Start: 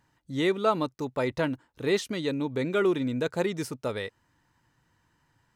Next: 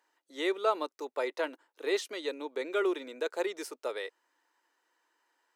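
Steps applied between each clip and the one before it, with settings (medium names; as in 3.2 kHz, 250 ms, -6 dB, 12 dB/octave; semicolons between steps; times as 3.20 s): steep high-pass 350 Hz 36 dB/octave; trim -3.5 dB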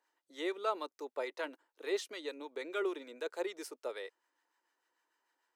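harmonic tremolo 6.7 Hz, depth 50%, crossover 890 Hz; trim -3.5 dB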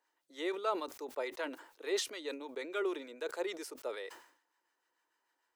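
decay stretcher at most 100 dB/s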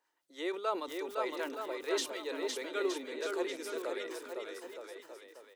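bouncing-ball echo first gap 510 ms, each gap 0.8×, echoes 5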